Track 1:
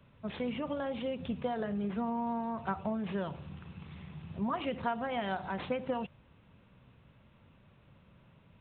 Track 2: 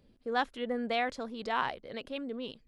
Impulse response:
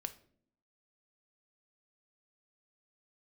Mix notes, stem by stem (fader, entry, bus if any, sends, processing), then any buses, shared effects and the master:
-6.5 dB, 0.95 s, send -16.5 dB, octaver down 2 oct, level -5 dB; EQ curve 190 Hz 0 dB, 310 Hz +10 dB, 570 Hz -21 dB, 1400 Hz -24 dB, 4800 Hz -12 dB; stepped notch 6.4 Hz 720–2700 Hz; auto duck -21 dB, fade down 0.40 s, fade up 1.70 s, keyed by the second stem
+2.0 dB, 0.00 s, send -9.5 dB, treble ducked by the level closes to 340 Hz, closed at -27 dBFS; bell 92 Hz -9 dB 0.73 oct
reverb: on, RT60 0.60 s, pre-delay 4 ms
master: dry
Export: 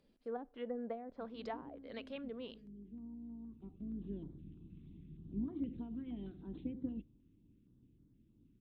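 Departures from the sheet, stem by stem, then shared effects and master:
stem 2 +2.0 dB -> -8.0 dB; master: extra low shelf 170 Hz -4.5 dB

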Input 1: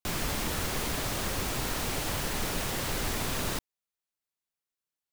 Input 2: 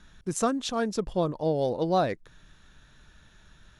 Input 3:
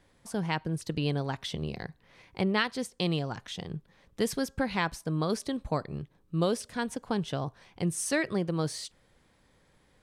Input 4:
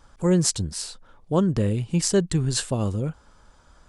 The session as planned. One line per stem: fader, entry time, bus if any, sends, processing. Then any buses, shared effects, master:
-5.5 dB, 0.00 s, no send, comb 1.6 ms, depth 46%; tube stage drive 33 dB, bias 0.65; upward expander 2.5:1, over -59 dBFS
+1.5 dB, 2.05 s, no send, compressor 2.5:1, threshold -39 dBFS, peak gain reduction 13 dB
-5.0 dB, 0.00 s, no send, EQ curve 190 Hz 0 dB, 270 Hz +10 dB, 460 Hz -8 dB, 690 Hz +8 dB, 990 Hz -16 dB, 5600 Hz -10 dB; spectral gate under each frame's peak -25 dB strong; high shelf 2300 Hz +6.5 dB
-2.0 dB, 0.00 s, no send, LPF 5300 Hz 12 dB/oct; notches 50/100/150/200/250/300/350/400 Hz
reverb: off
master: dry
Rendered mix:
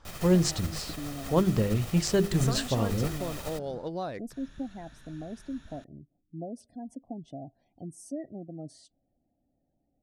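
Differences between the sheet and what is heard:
stem 1: missing tube stage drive 33 dB, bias 0.65; stem 3 -5.0 dB -> -12.0 dB

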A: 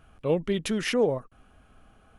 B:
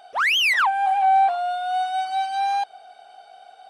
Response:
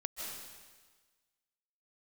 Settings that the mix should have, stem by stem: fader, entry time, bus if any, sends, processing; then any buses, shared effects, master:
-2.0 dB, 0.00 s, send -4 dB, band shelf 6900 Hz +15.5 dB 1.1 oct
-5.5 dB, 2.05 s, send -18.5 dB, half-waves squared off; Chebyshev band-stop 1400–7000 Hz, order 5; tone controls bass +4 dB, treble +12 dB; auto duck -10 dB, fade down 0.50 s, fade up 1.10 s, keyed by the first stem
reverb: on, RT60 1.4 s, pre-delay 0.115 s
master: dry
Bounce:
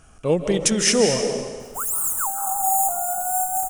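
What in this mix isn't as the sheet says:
stem B: entry 2.05 s -> 1.60 s; reverb return +8.0 dB

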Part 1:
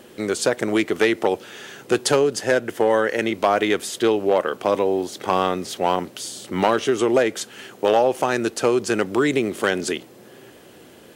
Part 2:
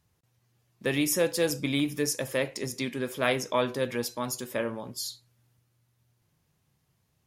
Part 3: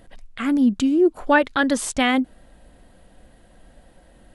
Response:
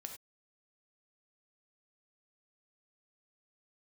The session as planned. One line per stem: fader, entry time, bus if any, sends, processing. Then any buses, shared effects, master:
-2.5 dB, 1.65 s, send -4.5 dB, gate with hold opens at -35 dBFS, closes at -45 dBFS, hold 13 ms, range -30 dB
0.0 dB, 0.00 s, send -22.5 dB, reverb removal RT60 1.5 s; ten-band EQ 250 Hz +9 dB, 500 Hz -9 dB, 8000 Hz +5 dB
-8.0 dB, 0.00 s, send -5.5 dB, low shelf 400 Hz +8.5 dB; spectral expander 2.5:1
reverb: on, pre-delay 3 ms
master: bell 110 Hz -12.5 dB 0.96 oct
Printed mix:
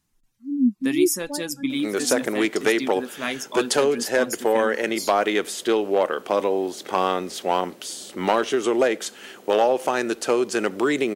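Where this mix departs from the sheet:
stem 3: send off; reverb return -7.5 dB

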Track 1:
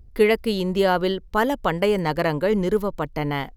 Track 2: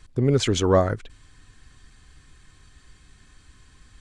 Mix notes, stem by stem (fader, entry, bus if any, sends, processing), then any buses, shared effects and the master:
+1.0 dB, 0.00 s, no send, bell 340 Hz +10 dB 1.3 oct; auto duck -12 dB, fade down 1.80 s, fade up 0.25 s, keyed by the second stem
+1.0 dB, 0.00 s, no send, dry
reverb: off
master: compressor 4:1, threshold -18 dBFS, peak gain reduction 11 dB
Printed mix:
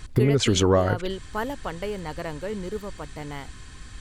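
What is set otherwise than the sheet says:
stem 1: missing bell 340 Hz +10 dB 1.3 oct; stem 2 +1.0 dB -> +10.0 dB

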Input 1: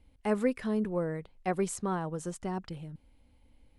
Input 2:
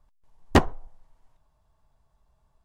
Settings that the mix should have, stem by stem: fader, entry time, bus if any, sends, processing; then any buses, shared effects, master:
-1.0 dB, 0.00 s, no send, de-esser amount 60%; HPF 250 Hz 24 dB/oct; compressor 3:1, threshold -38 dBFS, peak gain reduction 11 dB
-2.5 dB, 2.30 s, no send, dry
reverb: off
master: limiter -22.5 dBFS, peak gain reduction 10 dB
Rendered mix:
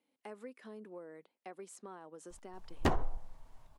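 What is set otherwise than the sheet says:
stem 1 -1.0 dB -> -9.0 dB; stem 2 -2.5 dB -> +5.5 dB

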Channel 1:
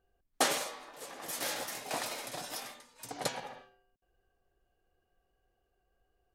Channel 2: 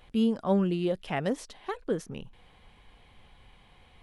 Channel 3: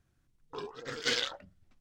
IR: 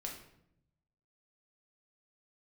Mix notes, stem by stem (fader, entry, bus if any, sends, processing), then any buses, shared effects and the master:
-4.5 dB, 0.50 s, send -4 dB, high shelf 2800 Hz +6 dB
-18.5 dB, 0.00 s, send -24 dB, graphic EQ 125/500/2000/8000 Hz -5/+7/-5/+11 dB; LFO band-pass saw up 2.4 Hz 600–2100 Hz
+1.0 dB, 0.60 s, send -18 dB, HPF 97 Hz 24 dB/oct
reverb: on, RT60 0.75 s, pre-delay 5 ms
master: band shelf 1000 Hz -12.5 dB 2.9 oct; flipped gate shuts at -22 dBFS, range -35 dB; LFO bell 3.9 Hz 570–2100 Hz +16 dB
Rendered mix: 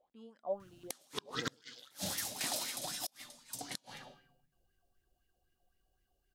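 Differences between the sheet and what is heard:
stem 2 -18.5 dB -> -10.0 dB; stem 3 +1.0 dB -> +12.5 dB

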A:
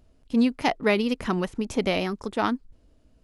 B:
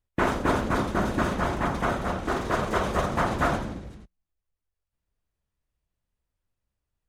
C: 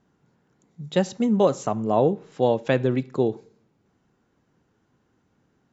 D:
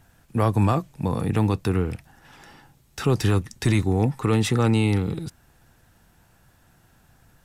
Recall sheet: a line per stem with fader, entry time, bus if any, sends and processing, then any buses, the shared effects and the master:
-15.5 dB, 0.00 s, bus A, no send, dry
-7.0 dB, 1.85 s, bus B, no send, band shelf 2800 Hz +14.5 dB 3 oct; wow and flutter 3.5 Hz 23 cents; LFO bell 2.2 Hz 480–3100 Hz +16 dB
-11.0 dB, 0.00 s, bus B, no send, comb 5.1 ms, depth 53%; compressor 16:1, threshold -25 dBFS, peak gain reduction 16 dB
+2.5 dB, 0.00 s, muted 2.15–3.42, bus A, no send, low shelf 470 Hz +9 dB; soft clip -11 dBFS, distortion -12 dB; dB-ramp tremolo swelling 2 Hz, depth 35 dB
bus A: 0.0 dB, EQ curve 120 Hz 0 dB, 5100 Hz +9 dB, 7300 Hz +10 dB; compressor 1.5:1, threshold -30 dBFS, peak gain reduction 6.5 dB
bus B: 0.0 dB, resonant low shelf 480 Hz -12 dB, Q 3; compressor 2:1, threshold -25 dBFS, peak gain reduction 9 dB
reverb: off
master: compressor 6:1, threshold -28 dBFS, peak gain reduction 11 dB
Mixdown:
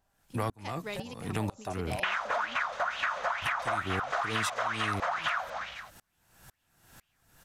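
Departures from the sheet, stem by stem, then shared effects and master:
stem A -15.5 dB -> -21.5 dB; stem D: missing low shelf 470 Hz +9 dB

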